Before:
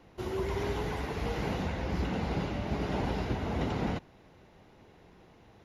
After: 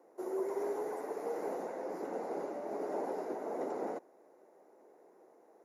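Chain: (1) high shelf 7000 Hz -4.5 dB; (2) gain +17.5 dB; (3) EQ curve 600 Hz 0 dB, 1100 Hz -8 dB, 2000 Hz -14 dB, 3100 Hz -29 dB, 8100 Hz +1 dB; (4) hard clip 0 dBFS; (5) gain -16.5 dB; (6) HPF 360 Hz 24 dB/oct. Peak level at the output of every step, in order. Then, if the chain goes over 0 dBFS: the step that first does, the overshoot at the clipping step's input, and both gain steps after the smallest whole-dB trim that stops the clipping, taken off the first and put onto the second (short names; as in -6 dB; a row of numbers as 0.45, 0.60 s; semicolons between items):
-20.0, -2.5, -3.0, -3.0, -19.5, -25.5 dBFS; no overload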